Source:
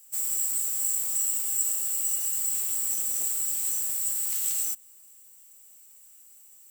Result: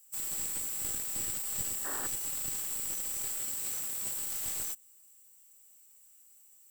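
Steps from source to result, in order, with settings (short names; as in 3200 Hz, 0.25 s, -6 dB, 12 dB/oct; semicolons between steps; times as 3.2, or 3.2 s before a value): one-sided fold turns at -25.5 dBFS; 1.84–2.07 painted sound noise 220–1900 Hz -36 dBFS; 3.4–4.17 HPF 54 Hz; gain -6.5 dB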